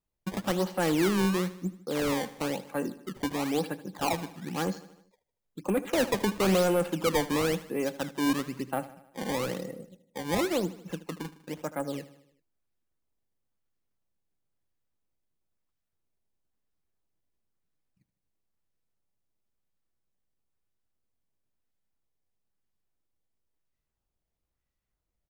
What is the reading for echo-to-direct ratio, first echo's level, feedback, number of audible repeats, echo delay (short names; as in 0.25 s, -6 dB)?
-15.0 dB, -16.5 dB, 56%, 4, 77 ms